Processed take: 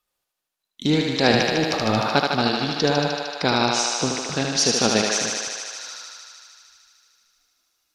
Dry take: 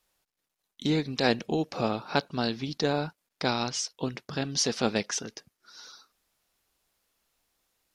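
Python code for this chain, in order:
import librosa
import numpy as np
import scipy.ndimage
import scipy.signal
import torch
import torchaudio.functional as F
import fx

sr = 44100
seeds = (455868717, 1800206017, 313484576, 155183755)

y = fx.noise_reduce_blind(x, sr, reduce_db=12)
y = fx.transient(y, sr, attack_db=-12, sustain_db=11, at=(1.31, 2.14))
y = fx.echo_thinned(y, sr, ms=76, feedback_pct=84, hz=310.0, wet_db=-3.0)
y = F.gain(torch.from_numpy(y), 6.0).numpy()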